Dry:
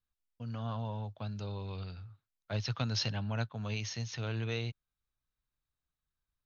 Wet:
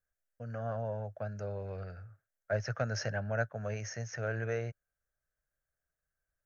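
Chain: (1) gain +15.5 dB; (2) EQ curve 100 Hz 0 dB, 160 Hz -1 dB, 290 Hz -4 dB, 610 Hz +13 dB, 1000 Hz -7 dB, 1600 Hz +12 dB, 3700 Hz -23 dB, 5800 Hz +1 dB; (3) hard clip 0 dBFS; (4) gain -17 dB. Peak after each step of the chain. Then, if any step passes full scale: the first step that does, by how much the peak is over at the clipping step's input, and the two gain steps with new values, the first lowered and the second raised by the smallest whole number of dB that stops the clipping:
-5.5, -2.0, -2.0, -19.0 dBFS; no overload

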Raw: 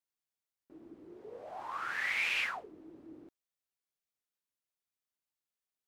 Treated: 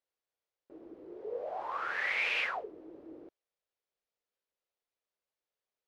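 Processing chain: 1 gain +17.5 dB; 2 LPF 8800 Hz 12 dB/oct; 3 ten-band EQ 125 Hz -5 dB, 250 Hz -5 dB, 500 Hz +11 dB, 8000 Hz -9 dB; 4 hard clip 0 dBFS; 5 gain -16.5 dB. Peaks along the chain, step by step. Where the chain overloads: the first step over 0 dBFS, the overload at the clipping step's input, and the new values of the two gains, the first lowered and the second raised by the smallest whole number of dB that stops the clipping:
-3.5, -4.0, -4.0, -4.0, -20.5 dBFS; no overload

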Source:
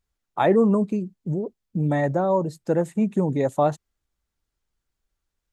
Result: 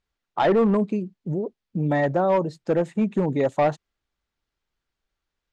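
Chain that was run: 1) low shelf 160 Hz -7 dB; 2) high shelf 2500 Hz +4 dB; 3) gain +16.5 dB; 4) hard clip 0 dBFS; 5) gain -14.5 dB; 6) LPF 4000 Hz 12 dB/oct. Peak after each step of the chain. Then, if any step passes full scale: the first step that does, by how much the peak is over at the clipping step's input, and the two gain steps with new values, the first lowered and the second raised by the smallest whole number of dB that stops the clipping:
-8.0, -7.5, +9.0, 0.0, -14.5, -14.0 dBFS; step 3, 9.0 dB; step 3 +7.5 dB, step 5 -5.5 dB

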